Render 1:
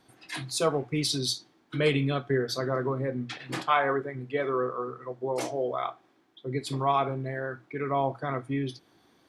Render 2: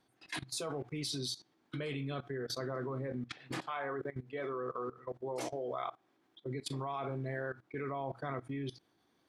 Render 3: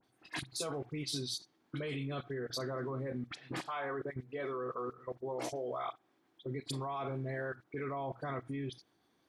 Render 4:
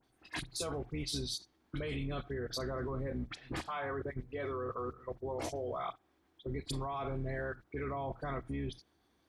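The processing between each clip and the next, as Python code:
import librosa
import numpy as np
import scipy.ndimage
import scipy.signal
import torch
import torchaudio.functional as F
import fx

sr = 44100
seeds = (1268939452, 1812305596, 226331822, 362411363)

y1 = fx.level_steps(x, sr, step_db=18)
y1 = F.gain(torch.from_numpy(y1), -2.0).numpy()
y2 = fx.dispersion(y1, sr, late='highs', ms=41.0, hz=2600.0)
y3 = fx.octave_divider(y2, sr, octaves=2, level_db=-3.0)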